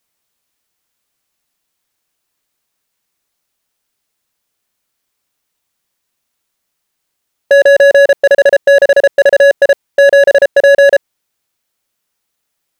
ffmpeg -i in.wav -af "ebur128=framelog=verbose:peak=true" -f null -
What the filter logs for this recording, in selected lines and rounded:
Integrated loudness:
  I:          -8.2 LUFS
  Threshold: -23.4 LUFS
Loudness range:
  LRA:         5.9 LU
  Threshold: -32.7 LUFS
  LRA low:   -14.0 LUFS
  LRA high:   -8.1 LUFS
True peak:
  Peak:       -1.2 dBFS